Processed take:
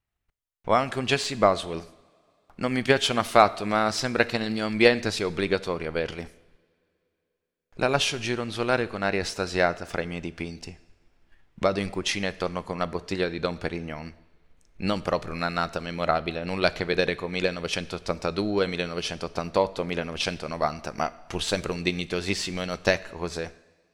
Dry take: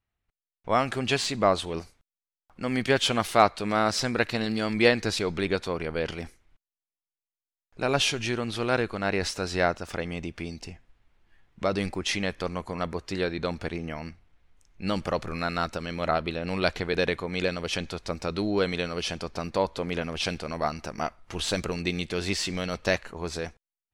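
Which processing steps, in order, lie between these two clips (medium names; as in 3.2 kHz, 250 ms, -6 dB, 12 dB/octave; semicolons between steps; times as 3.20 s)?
transient shaper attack +6 dB, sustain 0 dB; two-slope reverb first 0.9 s, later 3.1 s, from -19 dB, DRR 16 dB; trim -1 dB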